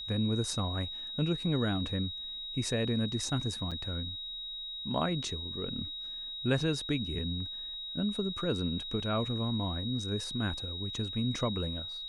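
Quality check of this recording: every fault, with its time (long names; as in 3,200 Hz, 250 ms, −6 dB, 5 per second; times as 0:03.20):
whistle 3,800 Hz −38 dBFS
0:03.71–0:03.72: drop-out 6.4 ms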